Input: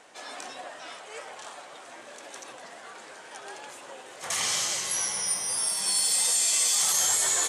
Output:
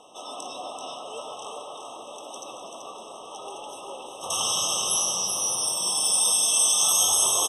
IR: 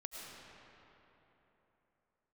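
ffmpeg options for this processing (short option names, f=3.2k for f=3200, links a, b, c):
-filter_complex "[0:a]aecho=1:1:384:0.531,asubboost=boost=4.5:cutoff=54,asplit=2[a][b];[1:a]atrim=start_sample=2205[c];[b][c]afir=irnorm=-1:irlink=0,volume=2dB[d];[a][d]amix=inputs=2:normalize=0,afftfilt=real='re*eq(mod(floor(b*sr/1024/1300),2),0)':imag='im*eq(mod(floor(b*sr/1024/1300),2),0)':win_size=1024:overlap=0.75"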